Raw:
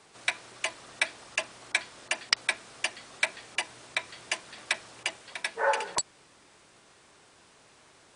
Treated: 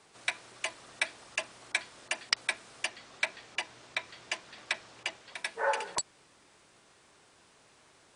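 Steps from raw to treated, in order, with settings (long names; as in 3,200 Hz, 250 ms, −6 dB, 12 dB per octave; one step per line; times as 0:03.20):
0:02.86–0:05.35: low-pass filter 7,000 Hz 12 dB per octave
level −3.5 dB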